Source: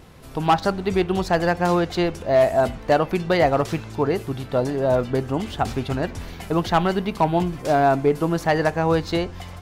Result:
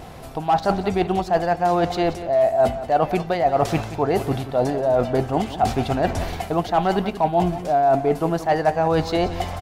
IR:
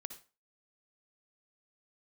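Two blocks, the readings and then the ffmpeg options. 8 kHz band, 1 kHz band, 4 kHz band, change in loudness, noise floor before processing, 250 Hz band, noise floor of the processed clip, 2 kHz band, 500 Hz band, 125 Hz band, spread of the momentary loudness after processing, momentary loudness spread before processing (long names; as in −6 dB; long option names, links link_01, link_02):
0.0 dB, +2.5 dB, −1.5 dB, +0.5 dB, −38 dBFS, −1.0 dB, −35 dBFS, −3.5 dB, +0.5 dB, −1.0 dB, 5 LU, 8 LU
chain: -af "equalizer=frequency=720:width=3.1:gain=11.5,areverse,acompressor=threshold=-24dB:ratio=5,areverse,aecho=1:1:179:0.224,volume=6.5dB"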